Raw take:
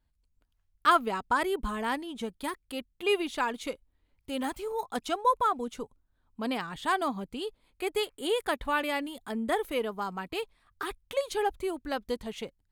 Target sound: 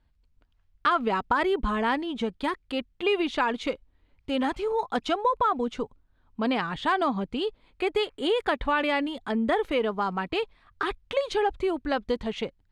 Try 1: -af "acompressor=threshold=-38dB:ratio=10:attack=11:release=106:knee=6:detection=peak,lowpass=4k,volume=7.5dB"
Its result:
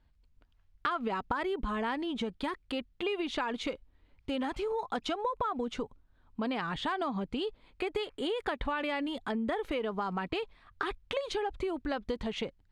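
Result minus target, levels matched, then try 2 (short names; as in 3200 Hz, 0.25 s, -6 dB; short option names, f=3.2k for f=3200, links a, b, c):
compressor: peak gain reduction +9.5 dB
-af "acompressor=threshold=-27.5dB:ratio=10:attack=11:release=106:knee=6:detection=peak,lowpass=4k,volume=7.5dB"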